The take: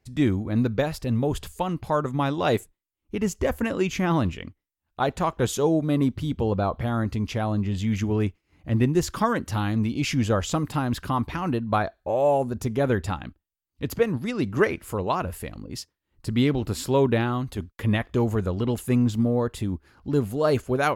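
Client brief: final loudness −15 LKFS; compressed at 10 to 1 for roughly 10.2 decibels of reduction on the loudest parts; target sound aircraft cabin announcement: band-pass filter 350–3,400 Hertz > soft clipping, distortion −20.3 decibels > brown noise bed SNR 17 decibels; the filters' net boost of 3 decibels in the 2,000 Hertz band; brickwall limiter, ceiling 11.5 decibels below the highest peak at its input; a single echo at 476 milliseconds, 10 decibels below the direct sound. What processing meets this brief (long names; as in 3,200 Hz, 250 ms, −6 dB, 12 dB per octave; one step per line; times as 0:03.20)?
parametric band 2,000 Hz +4.5 dB
downward compressor 10 to 1, threshold −26 dBFS
brickwall limiter −27.5 dBFS
band-pass filter 350–3,400 Hz
single-tap delay 476 ms −10 dB
soft clipping −29 dBFS
brown noise bed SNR 17 dB
level +27 dB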